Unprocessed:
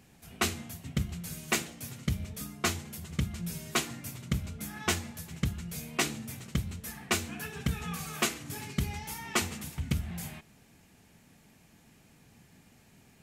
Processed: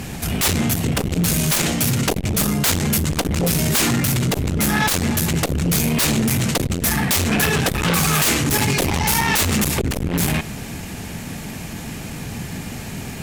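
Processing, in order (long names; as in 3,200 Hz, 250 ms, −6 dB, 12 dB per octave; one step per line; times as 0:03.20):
low-shelf EQ 140 Hz +4 dB
in parallel at −1 dB: downward compressor 6 to 1, threshold −36 dBFS, peak gain reduction 13 dB
on the sum: sine wavefolder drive 19 dB, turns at −12.5 dBFS
saturating transformer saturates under 220 Hz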